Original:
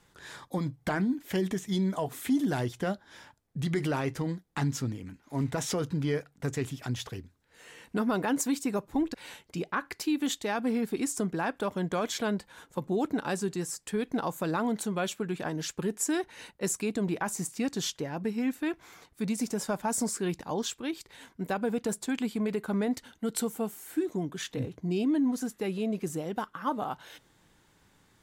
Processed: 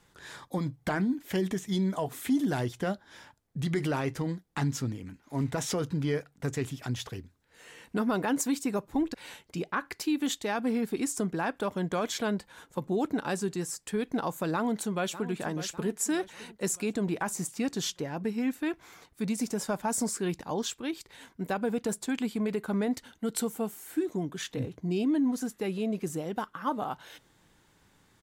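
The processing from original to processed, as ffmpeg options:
ffmpeg -i in.wav -filter_complex "[0:a]asplit=2[link_01][link_02];[link_02]afade=type=in:start_time=14.53:duration=0.01,afade=type=out:start_time=15.31:duration=0.01,aecho=0:1:600|1200|1800|2400|3000:0.223872|0.111936|0.055968|0.027984|0.013992[link_03];[link_01][link_03]amix=inputs=2:normalize=0" out.wav

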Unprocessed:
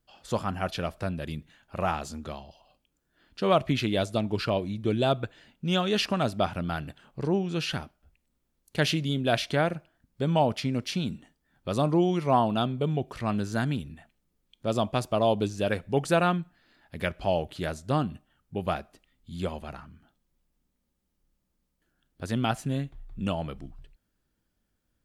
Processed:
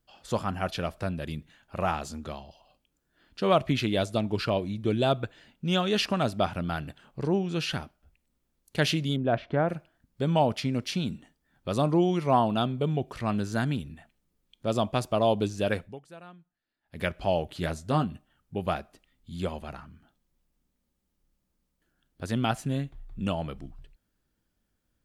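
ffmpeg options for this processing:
ffmpeg -i in.wav -filter_complex "[0:a]asettb=1/sr,asplit=3[link_01][link_02][link_03];[link_01]atrim=end=9.164[link_04];[link_02]atrim=start=9.16:end=9.69,asetpts=PTS-STARTPTS,afade=type=in:duration=0.004:curve=qsin,afade=type=out:start_time=0.526:duration=0.004:curve=qsin,lowpass=1300[link_05];[link_03]atrim=start=9.686[link_06];[link_04][link_05]acrossfade=duration=0.004:curve1=hsin:curve2=qsin[link_07];[link_07][link_06]acrossfade=duration=0.004:curve1=qsin:curve2=hsin,asettb=1/sr,asplit=3[link_08][link_09][link_10];[link_08]atrim=end=17.534[link_11];[link_09]atrim=start=17.53:end=18.05,asetpts=PTS-STARTPTS,afade=type=in:duration=0.004:curve=qsin,afade=type=out:start_time=0.516:duration=0.004:curve=qsin,asplit=2[link_12][link_13];[link_13]adelay=12,volume=-7.5dB[link_14];[link_12][link_14]amix=inputs=2:normalize=0,atrim=end_sample=22932[link_15];[link_10]atrim=start=18.046[link_16];[link_11][link_15]acrossfade=duration=0.004:curve1=hsin:curve2=qsin[link_17];[link_17][link_16]acrossfade=duration=0.004:curve1=qsin:curve2=hsin,asplit=3[link_18][link_19][link_20];[link_18]atrim=end=16.01,asetpts=PTS-STARTPTS,afade=type=out:start_time=15.82:duration=0.19:curve=qua:silence=0.0630957[link_21];[link_19]atrim=start=16.01:end=16.8,asetpts=PTS-STARTPTS,volume=-24dB[link_22];[link_20]atrim=start=16.8,asetpts=PTS-STARTPTS,afade=type=in:duration=0.19:curve=qua:silence=0.0630957[link_23];[link_21][link_22][link_23]concat=n=3:v=0:a=1" out.wav

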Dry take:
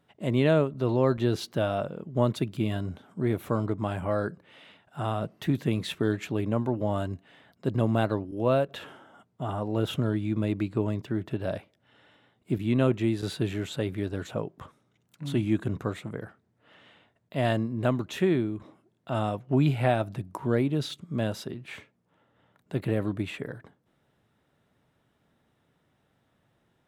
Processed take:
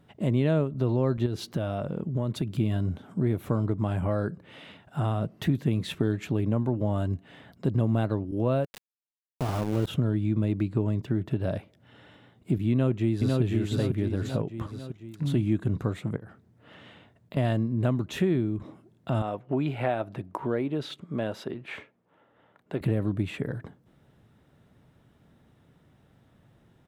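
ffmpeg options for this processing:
ffmpeg -i in.wav -filter_complex "[0:a]asettb=1/sr,asplit=3[link_01][link_02][link_03];[link_01]atrim=end=1.264[link_04];[link_02]atrim=start=1.26:end=2.59,asetpts=PTS-STARTPTS,afade=type=in:duration=0.004:curve=qsin,afade=type=out:start_time=1.326:duration=0.004:curve=qsin,acompressor=threshold=-32dB:ratio=2:attack=3.2:release=140:knee=1:detection=peak[link_05];[link_03]atrim=start=2.586[link_06];[link_04][link_05]acrossfade=duration=0.004:curve1=hsin:curve2=qsin[link_07];[link_07][link_06]acrossfade=duration=0.004:curve1=qsin:curve2=hsin,asplit=3[link_08][link_09][link_10];[link_08]afade=type=out:start_time=8.64:duration=0.02[link_11];[link_09]aeval=exprs='val(0)*gte(abs(val(0)),0.0266)':channel_layout=same,afade=type=in:start_time=8.64:duration=0.02,afade=type=out:start_time=9.86:duration=0.02[link_12];[link_10]afade=type=in:start_time=9.86:duration=0.02[link_13];[link_11][link_12][link_13]amix=inputs=3:normalize=0,asplit=2[link_14][link_15];[link_15]afade=type=in:start_time=12.71:duration=0.01,afade=type=out:start_time=13.41:duration=0.01,aecho=0:1:500|1000|1500|2000|2500:0.707946|0.283178|0.113271|0.0453085|0.0181234[link_16];[link_14][link_16]amix=inputs=2:normalize=0,asettb=1/sr,asplit=3[link_17][link_18][link_19];[link_17]atrim=end=16.164[link_20];[link_18]atrim=start=16.16:end=17.37,asetpts=PTS-STARTPTS,afade=type=in:duration=0.004:curve=qsin,afade=type=out:start_time=1.206:duration=0.004:curve=qsin,acompressor=threshold=-45dB:ratio=8:attack=3.2:release=140:knee=1:detection=peak[link_21];[link_19]atrim=start=17.366[link_22];[link_20][link_21]acrossfade=duration=0.004:curve1=hsin:curve2=qsin[link_23];[link_23][link_22]acrossfade=duration=0.004:curve1=qsin:curve2=hsin,asettb=1/sr,asplit=3[link_24][link_25][link_26];[link_24]atrim=end=19.224[link_27];[link_25]atrim=start=19.22:end=22.81,asetpts=PTS-STARTPTS,afade=type=in:duration=0.004:curve=qsin,afade=type=out:start_time=3.586:duration=0.004:curve=qsin,bass=frequency=250:gain=-15,treble=frequency=4000:gain=-11[link_28];[link_26]atrim=start=22.806[link_29];[link_27][link_28]acrossfade=duration=0.004:curve1=hsin:curve2=qsin[link_30];[link_30][link_29]acrossfade=duration=0.004:curve1=qsin:curve2=hsin,lowshelf=frequency=310:gain=9.5,acompressor=threshold=-33dB:ratio=2,volume=4dB" out.wav

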